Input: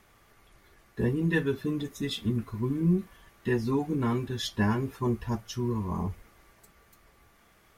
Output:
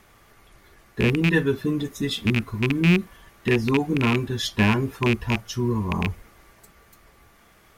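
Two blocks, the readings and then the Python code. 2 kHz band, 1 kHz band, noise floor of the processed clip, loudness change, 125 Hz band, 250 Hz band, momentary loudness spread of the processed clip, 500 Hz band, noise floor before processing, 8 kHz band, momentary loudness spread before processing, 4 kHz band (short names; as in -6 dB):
+11.5 dB, +6.0 dB, -56 dBFS, +7.0 dB, +6.0 dB, +6.0 dB, 7 LU, +6.0 dB, -62 dBFS, +6.5 dB, 7 LU, +9.0 dB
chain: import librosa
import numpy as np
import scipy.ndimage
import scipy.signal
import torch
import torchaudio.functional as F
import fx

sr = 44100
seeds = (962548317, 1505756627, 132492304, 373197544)

y = fx.rattle_buzz(x, sr, strikes_db=-25.0, level_db=-18.0)
y = y * librosa.db_to_amplitude(6.0)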